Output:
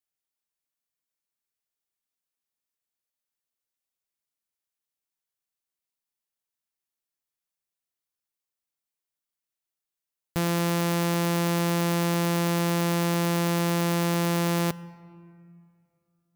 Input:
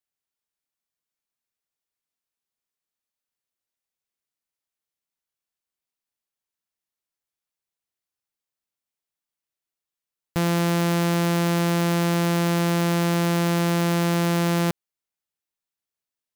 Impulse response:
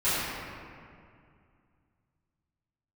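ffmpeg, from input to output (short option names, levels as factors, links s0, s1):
-filter_complex "[0:a]highshelf=f=6900:g=4.5,asplit=2[s0][s1];[1:a]atrim=start_sample=2205[s2];[s1][s2]afir=irnorm=-1:irlink=0,volume=0.0282[s3];[s0][s3]amix=inputs=2:normalize=0,volume=0.668"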